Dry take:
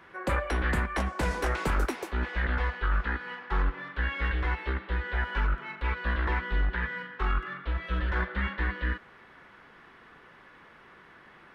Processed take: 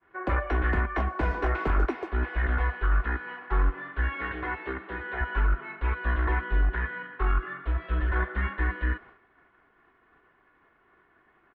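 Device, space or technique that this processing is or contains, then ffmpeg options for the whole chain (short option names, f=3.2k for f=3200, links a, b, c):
hearing-loss simulation: -filter_complex "[0:a]asettb=1/sr,asplit=3[a][b][c];[a]atrim=end=4.154[d];[b]atrim=start=4.15:end=5.21,asetpts=PTS-STARTPTS,afade=t=in:d=0.004:c=qsin,afade=t=out:st=1.056:d=0.004:c=qsin,highpass=f=96:w=0.5412,highpass=f=96:w=1.3066[e];[c]atrim=start=5.206[f];[d][e]acrossfade=d=0.004:c1=hsin:c2=qsin[g];[g][f]acrossfade=d=0.004:c1=qsin:c2=hsin,lowpass=2k,agate=range=-33dB:threshold=-46dB:ratio=3:detection=peak,aecho=1:1:2.8:0.44,volume=1dB"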